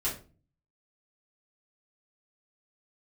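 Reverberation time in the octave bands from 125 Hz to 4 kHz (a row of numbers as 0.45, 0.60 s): 0.70, 0.55, 0.40, 0.35, 0.30, 0.25 s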